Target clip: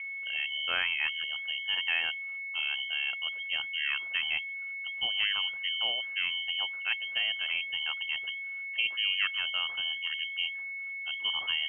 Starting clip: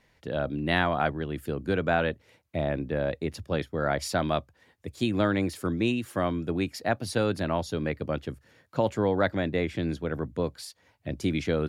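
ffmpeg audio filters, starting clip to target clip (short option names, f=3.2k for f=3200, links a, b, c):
-af "aeval=exprs='val(0)+0.0316*sin(2*PI*1100*n/s)':c=same,lowpass=f=2.8k:t=q:w=0.5098,lowpass=f=2.8k:t=q:w=0.6013,lowpass=f=2.8k:t=q:w=0.9,lowpass=f=2.8k:t=q:w=2.563,afreqshift=-3300,volume=-5.5dB"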